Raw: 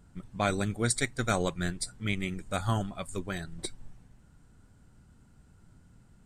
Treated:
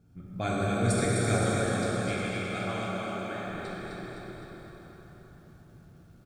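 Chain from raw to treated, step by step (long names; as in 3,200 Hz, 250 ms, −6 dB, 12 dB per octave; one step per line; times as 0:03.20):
0:01.38–0:03.46: meter weighting curve A
low-pass that shuts in the quiet parts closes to 1,200 Hz, open at −26.5 dBFS
low-shelf EQ 430 Hz +7.5 dB
bit-depth reduction 12 bits, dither none
notch comb filter 980 Hz
repeating echo 257 ms, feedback 54%, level −5 dB
dense smooth reverb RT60 4.6 s, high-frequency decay 0.65×, DRR −6 dB
feedback echo at a low word length 225 ms, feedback 55%, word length 9 bits, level −10 dB
level −7.5 dB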